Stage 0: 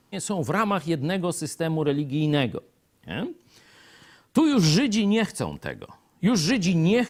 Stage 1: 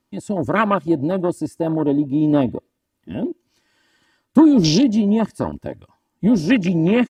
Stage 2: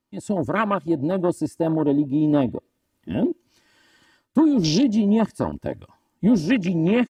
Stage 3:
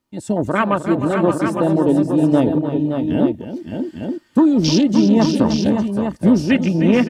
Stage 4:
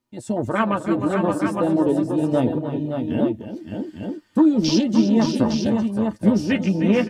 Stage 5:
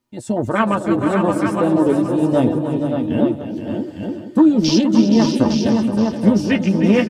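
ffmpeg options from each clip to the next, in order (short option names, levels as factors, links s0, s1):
-af "afwtdn=0.0398,aecho=1:1:3.3:0.46,volume=2"
-af "dynaudnorm=f=130:g=3:m=3.76,volume=0.398"
-af "aecho=1:1:307|570|589|860:0.282|0.447|0.133|0.447,volume=1.58"
-af "flanger=delay=8.2:depth=1.9:regen=32:speed=0.37:shape=sinusoidal"
-af "aecho=1:1:472|944|1416:0.316|0.0917|0.0266,volume=1.5"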